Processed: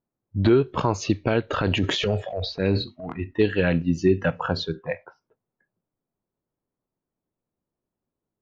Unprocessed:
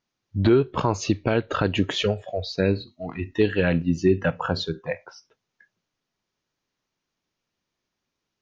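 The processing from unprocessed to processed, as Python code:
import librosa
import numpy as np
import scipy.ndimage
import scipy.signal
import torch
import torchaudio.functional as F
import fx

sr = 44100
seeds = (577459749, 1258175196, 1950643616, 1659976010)

y = fx.env_lowpass(x, sr, base_hz=720.0, full_db=-19.0)
y = fx.transient(y, sr, attack_db=-5, sustain_db=9, at=(1.5, 3.13))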